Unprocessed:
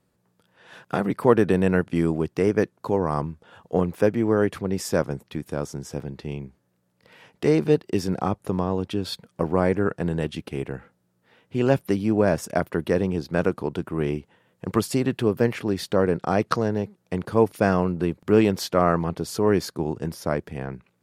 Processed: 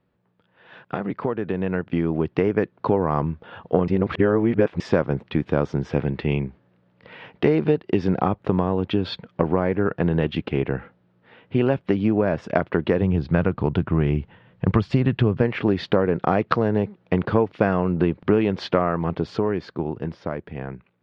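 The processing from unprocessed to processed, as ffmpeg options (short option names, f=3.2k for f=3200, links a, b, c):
-filter_complex "[0:a]asettb=1/sr,asplit=3[a][b][c];[a]atrim=end=5.894[d];[b]atrim=start=5.89:end=6.44,asetpts=PTS-STARTPTS,afade=t=in:d=0.004:c=qsin,afade=t=out:st=0.546:d=0.004:c=qsin,equalizer=f=2.2k:w=1.3:g=4.5[e];[c]atrim=start=6.436[f];[d][e]acrossfade=d=0.004:c1=hsin:c2=qsin[g];[g][f]acrossfade=d=0.004:c1=qsin:c2=hsin,asplit=3[h][i][j];[h]afade=t=out:st=13.01:d=0.02[k];[i]asubboost=boost=3:cutoff=170,afade=t=in:st=13.01:d=0.02,afade=t=out:st=15.41:d=0.02[l];[j]afade=t=in:st=15.41:d=0.02[m];[k][l][m]amix=inputs=3:normalize=0,asplit=3[n][o][p];[n]atrim=end=3.882[q];[o]atrim=start=3.878:end=4.802,asetpts=PTS-STARTPTS,areverse[r];[p]atrim=start=4.798[s];[q][r]acrossfade=d=0.004:c1=hsin:c2=hsin[t];[t][s]acrossfade=d=0.004:c1=hsin:c2=hsin,acompressor=threshold=-23dB:ratio=12,lowpass=f=3.4k:w=0.5412,lowpass=f=3.4k:w=1.3066,dynaudnorm=f=120:g=31:m=11.5dB"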